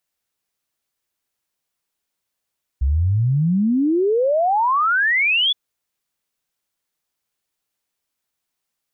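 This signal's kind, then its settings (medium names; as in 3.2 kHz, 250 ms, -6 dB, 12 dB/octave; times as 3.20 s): log sweep 63 Hz -> 3.5 kHz 2.72 s -14.5 dBFS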